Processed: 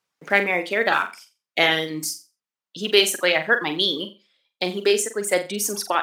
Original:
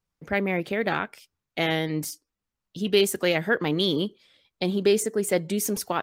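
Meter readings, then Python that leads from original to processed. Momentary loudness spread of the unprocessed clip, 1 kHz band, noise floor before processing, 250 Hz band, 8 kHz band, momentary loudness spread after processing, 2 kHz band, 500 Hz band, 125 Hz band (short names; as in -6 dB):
11 LU, +6.0 dB, under -85 dBFS, -3.5 dB, +5.5 dB, 11 LU, +8.0 dB, +1.5 dB, -7.0 dB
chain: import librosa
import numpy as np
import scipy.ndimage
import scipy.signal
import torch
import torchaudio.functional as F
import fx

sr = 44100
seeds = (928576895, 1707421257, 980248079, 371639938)

y = fx.block_float(x, sr, bits=7)
y = fx.dereverb_blind(y, sr, rt60_s=1.8)
y = fx.rider(y, sr, range_db=10, speed_s=2.0)
y = fx.weighting(y, sr, curve='A')
y = fx.room_flutter(y, sr, wall_m=7.6, rt60_s=0.29)
y = y * 10.0 ** (6.0 / 20.0)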